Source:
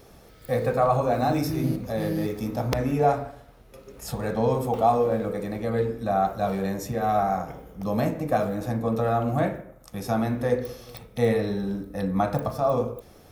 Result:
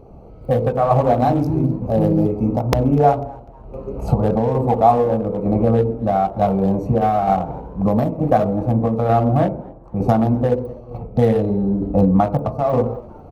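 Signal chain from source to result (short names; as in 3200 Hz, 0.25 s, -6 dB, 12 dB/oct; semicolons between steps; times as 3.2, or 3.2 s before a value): Wiener smoothing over 25 samples; recorder AGC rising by 14 dB/s; bell 830 Hz +6 dB 1.2 oct; frequency-shifting echo 0.248 s, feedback 40%, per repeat +110 Hz, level -23.5 dB; tremolo saw down 1.1 Hz, depth 45%; low shelf 380 Hz +7.5 dB; 9.49–11.81 mismatched tape noise reduction decoder only; gain +2.5 dB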